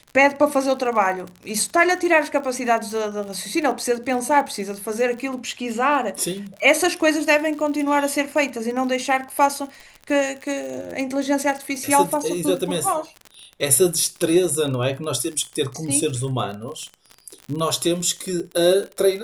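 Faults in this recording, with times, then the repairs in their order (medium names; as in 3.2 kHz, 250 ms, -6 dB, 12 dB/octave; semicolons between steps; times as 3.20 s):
crackle 42 per s -28 dBFS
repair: de-click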